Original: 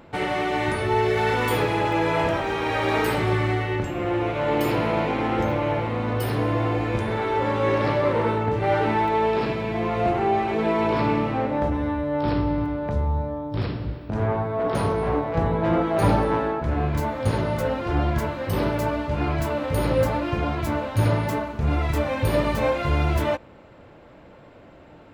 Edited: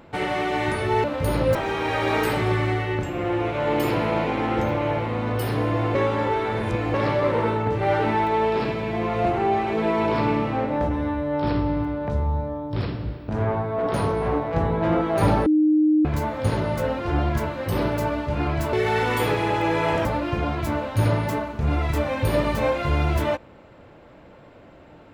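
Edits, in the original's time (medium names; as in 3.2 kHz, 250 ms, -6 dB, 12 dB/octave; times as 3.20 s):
1.04–2.36 s: swap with 19.54–20.05 s
6.76–7.75 s: reverse
16.27–16.86 s: bleep 307 Hz -14.5 dBFS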